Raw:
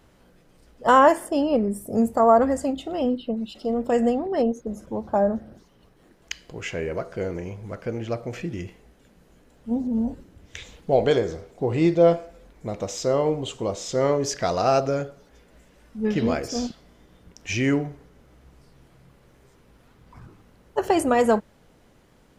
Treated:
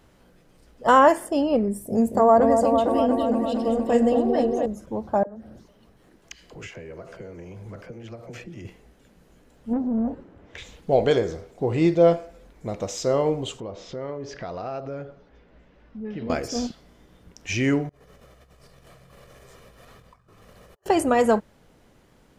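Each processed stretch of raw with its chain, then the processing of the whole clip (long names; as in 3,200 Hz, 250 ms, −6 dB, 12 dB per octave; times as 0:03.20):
0:01.69–0:04.66: notch filter 1,300 Hz, Q 6.5 + echo whose low-pass opens from repeat to repeat 229 ms, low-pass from 750 Hz, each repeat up 1 octave, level −3 dB
0:05.23–0:08.65: downward compressor 16 to 1, threshold −35 dBFS + all-pass dispersion lows, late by 46 ms, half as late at 470 Hz + single-tap delay 438 ms −22 dB
0:09.73–0:10.58: high-shelf EQ 2,500 Hz −10 dB + mid-hump overdrive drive 17 dB, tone 1,100 Hz, clips at −16 dBFS
0:13.60–0:16.30: high-frequency loss of the air 230 metres + downward compressor 2.5 to 1, threshold −34 dBFS
0:17.89–0:20.86: comb filter 1.7 ms, depth 53% + compressor whose output falls as the input rises −54 dBFS + low-shelf EQ 210 Hz −7.5 dB
whole clip: no processing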